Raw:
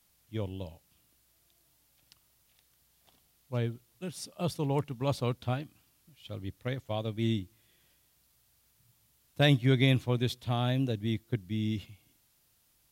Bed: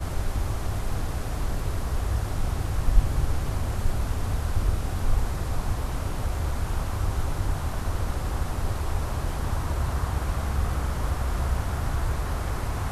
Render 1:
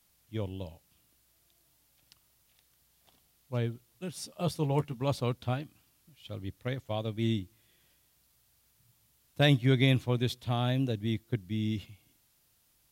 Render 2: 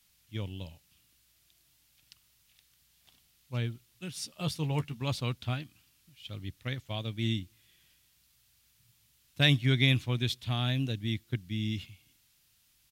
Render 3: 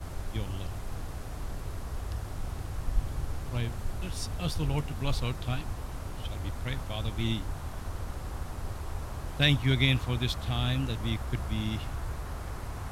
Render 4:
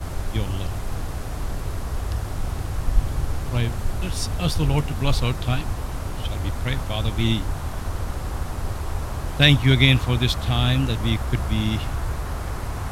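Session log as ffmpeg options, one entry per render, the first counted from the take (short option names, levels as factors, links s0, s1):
-filter_complex "[0:a]asettb=1/sr,asplit=3[s0][s1][s2];[s0]atrim=end=4.144[s3];[s1]atrim=start=4.14:end=4.97,asetpts=PTS-STARTPTS,afade=t=in:d=0.004:c=qsin,afade=t=out:st=0.826:d=0.004:c=qsin,asplit=2[s4][s5];[s5]adelay=13,volume=0.398[s6];[s4][s6]amix=inputs=2:normalize=0,atrim=end_sample=36603[s7];[s2]atrim=start=4.966[s8];[s3][s7]acrossfade=d=0.004:c1=hsin:c2=qsin[s9];[s9][s8]acrossfade=d=0.004:c1=qsin:c2=hsin"
-af "firequalizer=gain_entry='entry(120,0);entry(490,-8);entry(1400,0);entry(2600,5);entry(11000,0)':delay=0.05:min_phase=1"
-filter_complex "[1:a]volume=0.355[s0];[0:a][s0]amix=inputs=2:normalize=0"
-af "volume=2.82"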